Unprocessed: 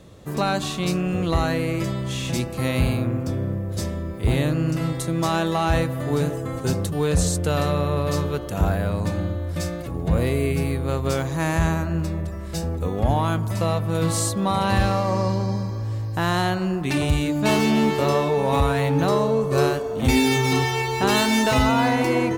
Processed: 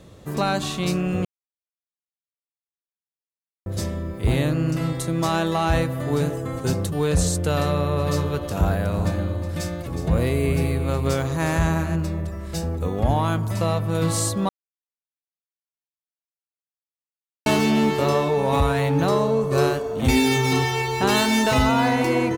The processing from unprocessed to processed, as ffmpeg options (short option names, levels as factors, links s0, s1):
-filter_complex "[0:a]asplit=3[s0][s1][s2];[s0]afade=t=out:st=7.98:d=0.02[s3];[s1]aecho=1:1:366:0.299,afade=t=in:st=7.98:d=0.02,afade=t=out:st=11.95:d=0.02[s4];[s2]afade=t=in:st=11.95:d=0.02[s5];[s3][s4][s5]amix=inputs=3:normalize=0,asplit=5[s6][s7][s8][s9][s10];[s6]atrim=end=1.25,asetpts=PTS-STARTPTS,afade=t=out:st=1.246:d=0.004:c=hsin[s11];[s7]atrim=start=1.25:end=3.66,asetpts=PTS-STARTPTS,volume=0[s12];[s8]atrim=start=3.66:end=14.49,asetpts=PTS-STARTPTS,afade=t=in:d=0.004:c=hsin,afade=t=out:st=10.826:d=0.004:c=hsin[s13];[s9]atrim=start=14.49:end=17.46,asetpts=PTS-STARTPTS,volume=0[s14];[s10]atrim=start=17.46,asetpts=PTS-STARTPTS,afade=t=in:d=0.004:c=hsin[s15];[s11][s12][s13][s14][s15]concat=n=5:v=0:a=1"